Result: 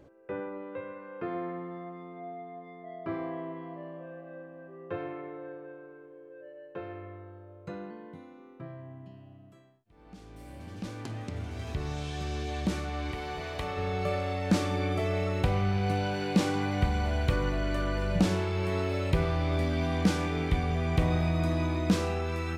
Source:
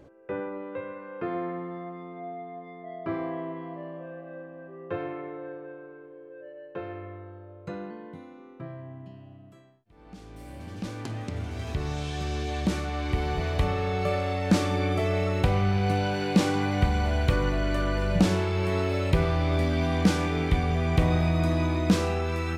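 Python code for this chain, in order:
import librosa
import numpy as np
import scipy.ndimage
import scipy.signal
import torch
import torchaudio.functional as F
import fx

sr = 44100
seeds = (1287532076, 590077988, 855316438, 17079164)

y = fx.low_shelf(x, sr, hz=260.0, db=-11.5, at=(13.11, 13.77))
y = y * 10.0 ** (-3.5 / 20.0)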